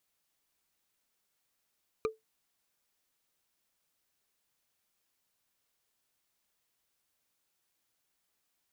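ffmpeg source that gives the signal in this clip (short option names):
-f lavfi -i "aevalsrc='0.0631*pow(10,-3*t/0.17)*sin(2*PI*440*t)+0.0376*pow(10,-3*t/0.05)*sin(2*PI*1213.1*t)+0.0224*pow(10,-3*t/0.022)*sin(2*PI*2377.8*t)+0.0133*pow(10,-3*t/0.012)*sin(2*PI*3930.5*t)+0.00794*pow(10,-3*t/0.008)*sin(2*PI*5869.6*t)':d=0.45:s=44100"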